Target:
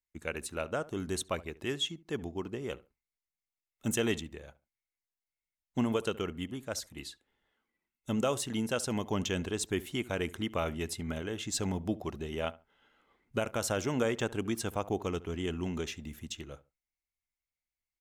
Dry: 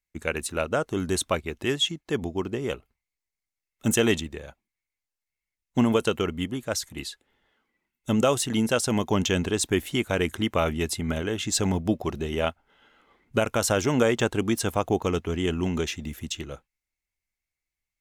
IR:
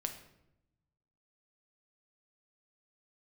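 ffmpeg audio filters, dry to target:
-filter_complex "[0:a]asplit=2[link_01][link_02];[link_02]adelay=70,lowpass=frequency=1400:poles=1,volume=-18dB,asplit=2[link_03][link_04];[link_04]adelay=70,lowpass=frequency=1400:poles=1,volume=0.24[link_05];[link_01][link_03][link_05]amix=inputs=3:normalize=0,volume=-8.5dB"

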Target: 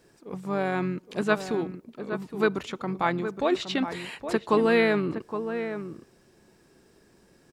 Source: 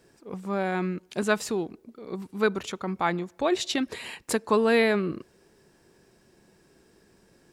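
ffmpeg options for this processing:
ffmpeg -i in.wav -filter_complex "[0:a]acrossover=split=4300[link_01][link_02];[link_02]acompressor=threshold=-48dB:ratio=4:attack=1:release=60[link_03];[link_01][link_03]amix=inputs=2:normalize=0,asplit=2[link_04][link_05];[link_05]adelay=816.3,volume=-9dB,highshelf=frequency=4000:gain=-18.4[link_06];[link_04][link_06]amix=inputs=2:normalize=0,asplit=2[link_07][link_08];[link_08]asetrate=33038,aresample=44100,atempo=1.33484,volume=-13dB[link_09];[link_07][link_09]amix=inputs=2:normalize=0" out.wav

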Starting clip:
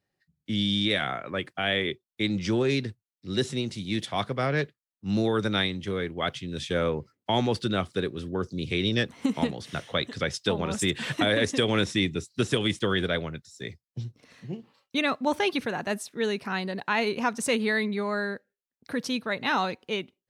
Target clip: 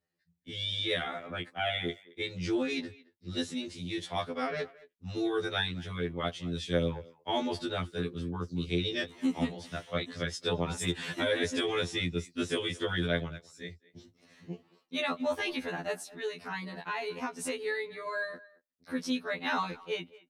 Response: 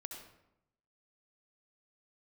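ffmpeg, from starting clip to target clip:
-filter_complex "[0:a]asettb=1/sr,asplit=3[link_01][link_02][link_03];[link_01]atrim=end=16.074[link_04];[link_02]atrim=start=16.07:end=18.07,asetpts=PTS-STARTPTS,afade=type=in:duration=0.004:curve=qsin,afade=type=out:start_time=1.996:duration=0.004:curve=qsin,acompressor=threshold=-27dB:ratio=4[link_05];[link_03]atrim=start=18.066[link_06];[link_04][link_05]acrossfade=duration=0.004:curve1=hsin:curve2=qsin[link_07];[link_07][link_06]acrossfade=duration=0.004:curve1=qsin:curve2=hsin,asplit=2[link_08][link_09];[link_09]adelay=220,highpass=300,lowpass=3400,asoftclip=type=hard:threshold=-20dB,volume=-20dB[link_10];[link_08][link_10]amix=inputs=2:normalize=0,afftfilt=real='re*2*eq(mod(b,4),0)':imag='im*2*eq(mod(b,4),0)':win_size=2048:overlap=0.75,volume=-3dB"

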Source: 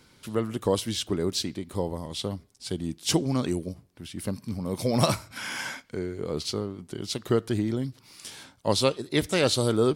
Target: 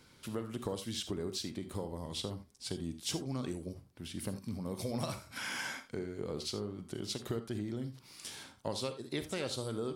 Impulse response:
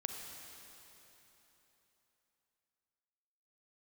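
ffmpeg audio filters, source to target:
-filter_complex "[0:a]acompressor=threshold=-31dB:ratio=5[link_01];[1:a]atrim=start_sample=2205,atrim=end_sample=3969[link_02];[link_01][link_02]afir=irnorm=-1:irlink=0,volume=-2dB"

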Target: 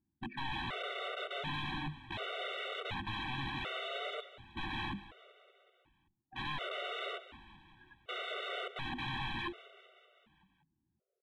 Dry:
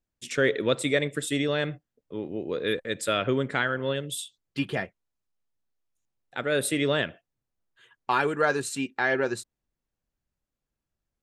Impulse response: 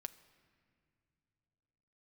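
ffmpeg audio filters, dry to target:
-filter_complex "[0:a]lowpass=1500,aemphasis=mode=reproduction:type=75fm,bandreject=frequency=50:width_type=h:width=6,bandreject=frequency=100:width_type=h:width=6,bandreject=frequency=150:width_type=h:width=6,bandreject=frequency=200:width_type=h:width=6,bandreject=frequency=250:width_type=h:width=6,bandreject=frequency=300:width_type=h:width=6,bandreject=frequency=350:width_type=h:width=6,afftdn=noise_reduction=13:noise_floor=-47,highpass=100,lowshelf=frequency=690:width_type=q:width=1.5:gain=8.5,areverse,acompressor=threshold=-28dB:ratio=6,areverse,aeval=exprs='(tanh(50.1*val(0)+0.2)-tanh(0.2))/50.1':channel_layout=same,aresample=8000,aeval=exprs='(mod(200*val(0)+1,2)-1)/200':channel_layout=same,aresample=44100,aeval=exprs='0.00944*(cos(1*acos(clip(val(0)/0.00944,-1,1)))-cos(1*PI/2))+0.000266*(cos(2*acos(clip(val(0)/0.00944,-1,1)))-cos(2*PI/2))+0.0000668*(cos(4*acos(clip(val(0)/0.00944,-1,1)))-cos(4*PI/2))+0.000211*(cos(6*acos(clip(val(0)/0.00944,-1,1)))-cos(6*PI/2))':channel_layout=same,asplit=7[link_01][link_02][link_03][link_04][link_05][link_06][link_07];[link_02]adelay=191,afreqshift=-32,volume=-16.5dB[link_08];[link_03]adelay=382,afreqshift=-64,volume=-20.5dB[link_09];[link_04]adelay=573,afreqshift=-96,volume=-24.5dB[link_10];[link_05]adelay=764,afreqshift=-128,volume=-28.5dB[link_11];[link_06]adelay=955,afreqshift=-160,volume=-32.6dB[link_12];[link_07]adelay=1146,afreqshift=-192,volume=-36.6dB[link_13];[link_01][link_08][link_09][link_10][link_11][link_12][link_13]amix=inputs=7:normalize=0,afftfilt=real='re*gt(sin(2*PI*0.68*pts/sr)*(1-2*mod(floor(b*sr/1024/380),2)),0)':imag='im*gt(sin(2*PI*0.68*pts/sr)*(1-2*mod(floor(b*sr/1024/380),2)),0)':win_size=1024:overlap=0.75,volume=14dB"

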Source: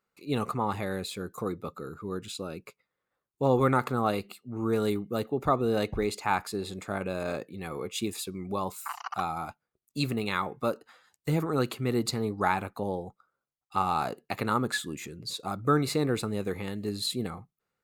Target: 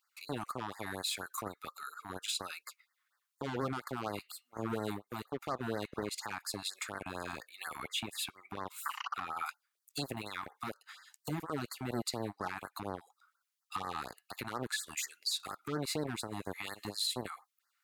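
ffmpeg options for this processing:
ffmpeg -i in.wav -filter_complex "[0:a]asettb=1/sr,asplit=3[link_01][link_02][link_03];[link_01]atrim=end=7.834[link_04];[link_02]atrim=start=7.83:end=9.46,asetpts=PTS-STARTPTS,afade=type=in:duration=0.004:curve=qsin,afade=type=out:start_time=1.626:duration=0.004:curve=qsin,highshelf=frequency=3900:width_type=q:width=1.5:gain=-8[link_05];[link_03]atrim=start=9.456[link_06];[link_04][link_05]acrossfade=duration=0.004:curve1=hsin:curve2=qsin[link_07];[link_07][link_06]acrossfade=duration=0.004:curve1=qsin:curve2=hsin,acrossover=split=1100[link_08][link_09];[link_08]acrusher=bits=3:mix=0:aa=0.5[link_10];[link_10][link_09]amix=inputs=2:normalize=0,acompressor=threshold=-35dB:ratio=6,asplit=2[link_11][link_12];[link_12]volume=31.5dB,asoftclip=hard,volume=-31.5dB,volume=-8dB[link_13];[link_11][link_13]amix=inputs=2:normalize=0,highpass=frequency=100:poles=1,alimiter=level_in=6dB:limit=-24dB:level=0:latency=1:release=112,volume=-6dB,afftfilt=real='re*(1-between(b*sr/1024,440*pow(3000/440,0.5+0.5*sin(2*PI*4.2*pts/sr))/1.41,440*pow(3000/440,0.5+0.5*sin(2*PI*4.2*pts/sr))*1.41))':imag='im*(1-between(b*sr/1024,440*pow(3000/440,0.5+0.5*sin(2*PI*4.2*pts/sr))/1.41,440*pow(3000/440,0.5+0.5*sin(2*PI*4.2*pts/sr))*1.41))':win_size=1024:overlap=0.75,volume=5dB" out.wav

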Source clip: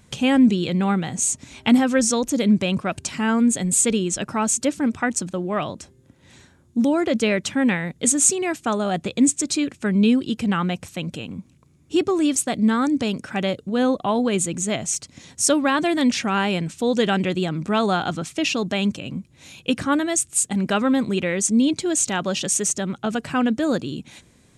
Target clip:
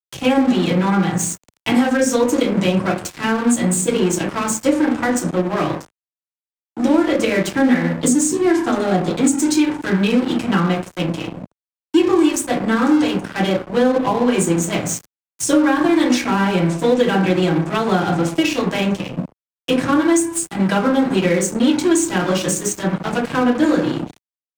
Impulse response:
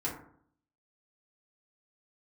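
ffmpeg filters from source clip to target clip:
-filter_complex "[0:a]asettb=1/sr,asplit=3[link_01][link_02][link_03];[link_01]atrim=end=7.614[link_04];[link_02]atrim=start=7.61:end=9.14,asetpts=PTS-STARTPTS,afade=type=in:duration=0.004:curve=qsin,afade=type=out:start_time=1.526:duration=0.004:curve=qsin,equalizer=frequency=250:width_type=o:width=0.33:gain=8,equalizer=frequency=1000:width_type=o:width=0.33:gain=-9,equalizer=frequency=2500:width_type=o:width=0.33:gain=-12,equalizer=frequency=5000:width_type=o:width=0.33:gain=6[link_05];[link_03]atrim=start=9.136[link_06];[link_04][link_05]acrossfade=duration=0.004:curve1=hsin:curve2=qsin[link_07];[link_07][link_06]acrossfade=duration=0.004:curve1=qsin:curve2=hsin[link_08];[1:a]atrim=start_sample=2205,asetrate=48510,aresample=44100[link_09];[link_08][link_09]afir=irnorm=-1:irlink=0,aeval=exprs='sgn(val(0))*max(abs(val(0))-0.0376,0)':channel_layout=same,acrossover=split=99|510[link_10][link_11][link_12];[link_10]acompressor=threshold=-51dB:ratio=4[link_13];[link_11]acompressor=threshold=-21dB:ratio=4[link_14];[link_12]acompressor=threshold=-25dB:ratio=4[link_15];[link_13][link_14][link_15]amix=inputs=3:normalize=0,volume=5.5dB"

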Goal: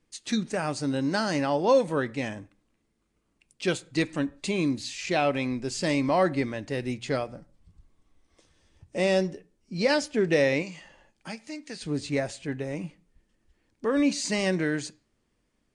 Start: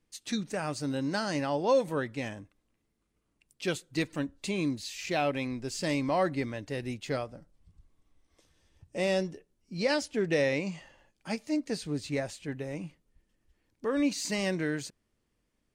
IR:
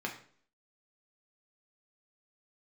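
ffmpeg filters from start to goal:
-filter_complex "[0:a]asettb=1/sr,asplit=3[link_01][link_02][link_03];[link_01]atrim=end=10.624[link_04];[link_02]atrim=start=10.62:end=11.81,asetpts=PTS-STARTPTS,afade=type=in:duration=0.004:curve=qsin,afade=type=out:start_time=1.186:duration=0.004:curve=qsin,acrossover=split=1300|3300[link_05][link_06][link_07];[link_05]acompressor=threshold=-44dB:ratio=4[link_08];[link_06]acompressor=threshold=-47dB:ratio=4[link_09];[link_07]acompressor=threshold=-50dB:ratio=4[link_10];[link_08][link_09][link_10]amix=inputs=3:normalize=0[link_11];[link_03]atrim=start=11.806[link_12];[link_04][link_11]acrossfade=duration=0.004:curve1=hsin:curve2=qsin[link_13];[link_13][link_12]acrossfade=duration=0.004:curve1=qsin:curve2=hsin,asplit=2[link_14][link_15];[1:a]atrim=start_sample=2205,afade=type=out:start_time=0.26:duration=0.01,atrim=end_sample=11907[link_16];[link_15][link_16]afir=irnorm=-1:irlink=0,volume=-16dB[link_17];[link_14][link_17]amix=inputs=2:normalize=0,volume=3dB" -ar 22050 -c:a aac -b:a 96k

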